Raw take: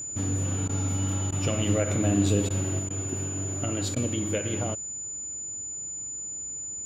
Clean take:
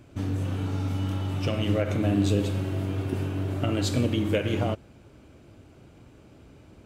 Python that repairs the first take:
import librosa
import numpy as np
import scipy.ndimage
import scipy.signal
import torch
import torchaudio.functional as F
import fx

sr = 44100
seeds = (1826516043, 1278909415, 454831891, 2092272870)

y = fx.notch(x, sr, hz=7000.0, q=30.0)
y = fx.fix_interpolate(y, sr, at_s=(0.68, 1.31, 2.49, 2.89, 3.95), length_ms=12.0)
y = fx.gain(y, sr, db=fx.steps((0.0, 0.0), (2.79, 4.0)))